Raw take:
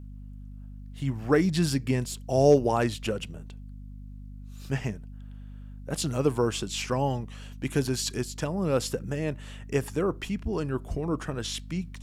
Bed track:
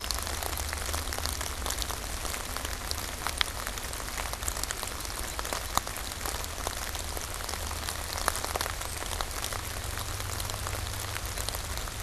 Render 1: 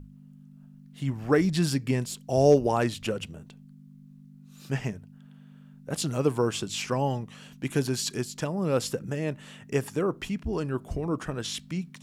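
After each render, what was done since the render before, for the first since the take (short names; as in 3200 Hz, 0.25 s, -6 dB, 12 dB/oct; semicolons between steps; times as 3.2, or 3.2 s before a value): notches 50/100 Hz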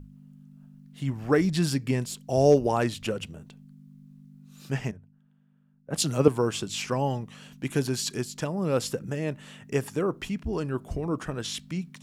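4.91–6.28 three-band expander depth 70%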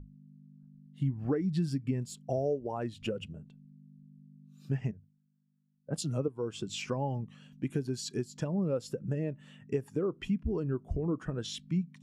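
compressor 12:1, threshold -30 dBFS, peak gain reduction 18.5 dB; spectral expander 1.5:1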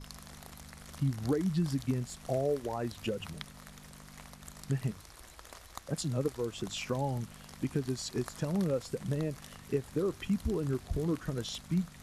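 add bed track -17.5 dB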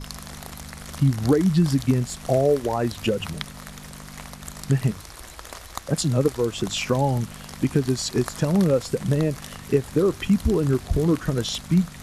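gain +11.5 dB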